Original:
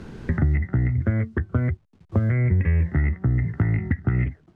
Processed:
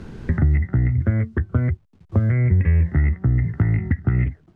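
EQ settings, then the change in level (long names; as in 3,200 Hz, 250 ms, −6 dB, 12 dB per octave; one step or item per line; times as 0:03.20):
low-shelf EQ 130 Hz +5 dB
0.0 dB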